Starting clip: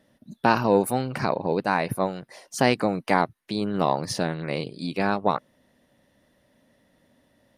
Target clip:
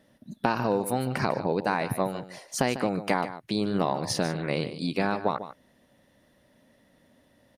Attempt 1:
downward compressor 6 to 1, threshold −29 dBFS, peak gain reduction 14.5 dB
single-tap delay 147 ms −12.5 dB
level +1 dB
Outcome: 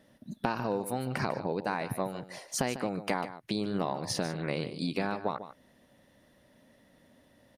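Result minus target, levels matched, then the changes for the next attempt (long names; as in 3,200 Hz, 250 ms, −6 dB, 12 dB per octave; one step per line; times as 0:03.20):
downward compressor: peak gain reduction +6 dB
change: downward compressor 6 to 1, threshold −22 dBFS, peak gain reduction 9 dB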